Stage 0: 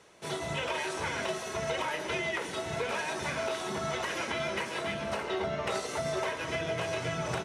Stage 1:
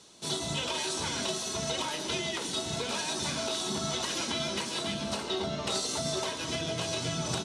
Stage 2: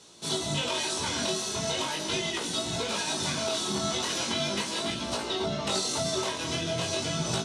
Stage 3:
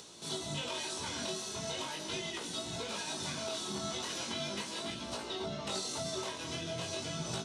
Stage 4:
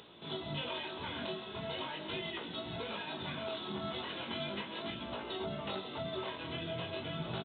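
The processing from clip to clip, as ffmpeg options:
ffmpeg -i in.wav -af "equalizer=frequency=250:width_type=o:width=1:gain=7,equalizer=frequency=500:width_type=o:width=1:gain=-5,equalizer=frequency=2000:width_type=o:width=1:gain=-9,equalizer=frequency=4000:width_type=o:width=1:gain=11,equalizer=frequency=8000:width_type=o:width=1:gain=8" out.wav
ffmpeg -i in.wav -af "flanger=delay=17:depth=7.2:speed=0.39,volume=5.5dB" out.wav
ffmpeg -i in.wav -af "acompressor=mode=upward:threshold=-35dB:ratio=2.5,volume=-8.5dB" out.wav
ffmpeg -i in.wav -af "aresample=8000,aresample=44100" out.wav

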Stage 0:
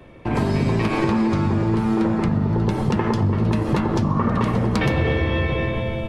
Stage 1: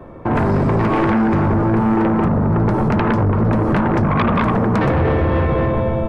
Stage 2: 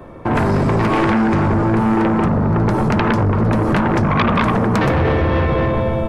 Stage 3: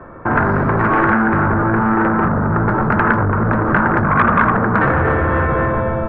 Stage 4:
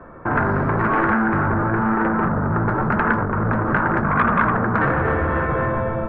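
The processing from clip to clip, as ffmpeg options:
ffmpeg -i in.wav -af "highshelf=frequency=1800:width_type=q:width=1.5:gain=-13,bandreject=frequency=60:width_type=h:width=6,bandreject=frequency=120:width_type=h:width=6,aeval=exprs='0.501*sin(PI/2*3.16*val(0)/0.501)':channel_layout=same,volume=-6dB" out.wav
ffmpeg -i in.wav -af "highshelf=frequency=3000:gain=11" out.wav
ffmpeg -i in.wav -af "lowpass=frequency=1500:width_type=q:width=3.7,volume=-1.5dB" out.wav
ffmpeg -i in.wav -af "flanger=delay=4.1:depth=3.9:regen=-69:speed=0.96:shape=sinusoidal" out.wav

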